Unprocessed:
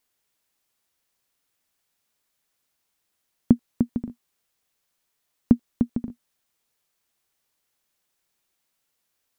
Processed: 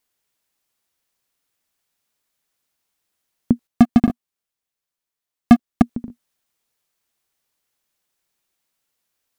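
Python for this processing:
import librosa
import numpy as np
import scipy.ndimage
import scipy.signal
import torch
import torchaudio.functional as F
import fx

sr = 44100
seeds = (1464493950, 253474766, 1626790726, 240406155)

y = fx.leveller(x, sr, passes=5, at=(3.67, 5.82))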